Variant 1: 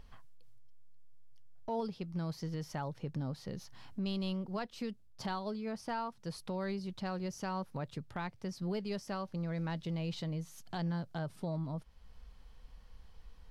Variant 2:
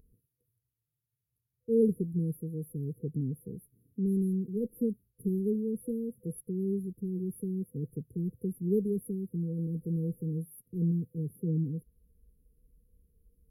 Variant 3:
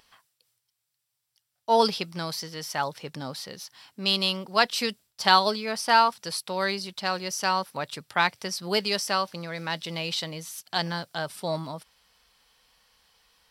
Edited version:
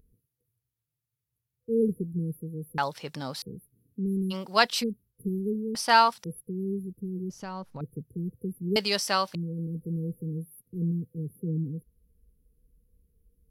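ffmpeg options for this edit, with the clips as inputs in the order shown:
ffmpeg -i take0.wav -i take1.wav -i take2.wav -filter_complex "[2:a]asplit=4[link_01][link_02][link_03][link_04];[1:a]asplit=6[link_05][link_06][link_07][link_08][link_09][link_10];[link_05]atrim=end=2.782[link_11];[link_01]atrim=start=2.778:end=3.422[link_12];[link_06]atrim=start=3.418:end=4.34[link_13];[link_02]atrim=start=4.3:end=4.84[link_14];[link_07]atrim=start=4.8:end=5.752[link_15];[link_03]atrim=start=5.748:end=6.242[link_16];[link_08]atrim=start=6.238:end=7.302[link_17];[0:a]atrim=start=7.298:end=7.812[link_18];[link_09]atrim=start=7.808:end=8.762[link_19];[link_04]atrim=start=8.758:end=9.352[link_20];[link_10]atrim=start=9.348[link_21];[link_11][link_12]acrossfade=duration=0.004:curve1=hsin:curve2=hsin[link_22];[link_22][link_13]acrossfade=duration=0.004:curve1=hsin:curve2=hsin[link_23];[link_23][link_14]acrossfade=duration=0.04:curve1=tri:curve2=tri[link_24];[link_24][link_15]acrossfade=duration=0.04:curve1=tri:curve2=tri[link_25];[link_25][link_16]acrossfade=duration=0.004:curve1=hsin:curve2=hsin[link_26];[link_26][link_17]acrossfade=duration=0.004:curve1=hsin:curve2=hsin[link_27];[link_27][link_18]acrossfade=duration=0.004:curve1=hsin:curve2=hsin[link_28];[link_28][link_19]acrossfade=duration=0.004:curve1=hsin:curve2=hsin[link_29];[link_29][link_20]acrossfade=duration=0.004:curve1=hsin:curve2=hsin[link_30];[link_30][link_21]acrossfade=duration=0.004:curve1=hsin:curve2=hsin" out.wav

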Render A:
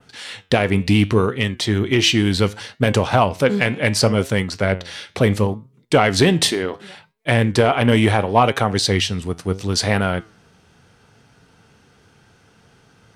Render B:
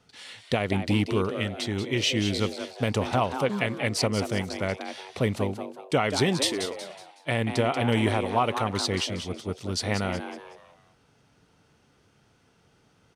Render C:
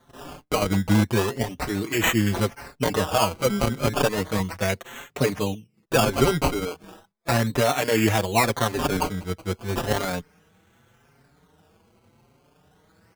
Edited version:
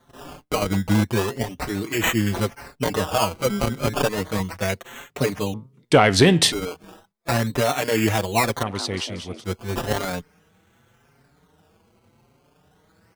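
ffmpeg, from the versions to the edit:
ffmpeg -i take0.wav -i take1.wav -i take2.wav -filter_complex "[2:a]asplit=3[link_01][link_02][link_03];[link_01]atrim=end=5.542[link_04];[0:a]atrim=start=5.538:end=6.522[link_05];[link_02]atrim=start=6.518:end=8.632[link_06];[1:a]atrim=start=8.628:end=9.442[link_07];[link_03]atrim=start=9.438[link_08];[link_04][link_05]acrossfade=duration=0.004:curve1=hsin:curve2=hsin[link_09];[link_09][link_06]acrossfade=duration=0.004:curve1=hsin:curve2=hsin[link_10];[link_10][link_07]acrossfade=duration=0.004:curve1=hsin:curve2=hsin[link_11];[link_11][link_08]acrossfade=duration=0.004:curve1=hsin:curve2=hsin" out.wav

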